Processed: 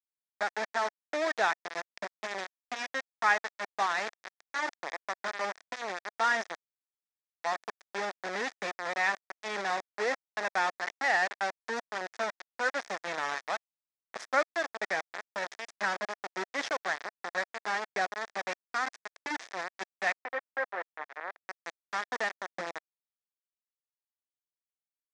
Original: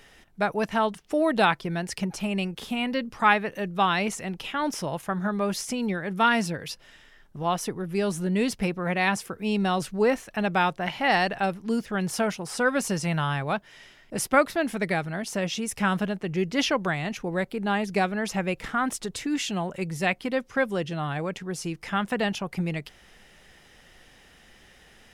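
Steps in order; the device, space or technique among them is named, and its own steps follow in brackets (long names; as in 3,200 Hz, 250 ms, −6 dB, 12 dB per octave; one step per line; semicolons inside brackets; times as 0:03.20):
hand-held game console (bit reduction 4 bits; loudspeaker in its box 480–5,900 Hz, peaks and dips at 690 Hz +3 dB, 1,800 Hz +8 dB, 2,900 Hz −9 dB, 4,300 Hz −4 dB)
0:20.21–0:21.47: three-way crossover with the lows and the highs turned down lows −15 dB, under 330 Hz, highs −23 dB, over 2,500 Hz
level −7.5 dB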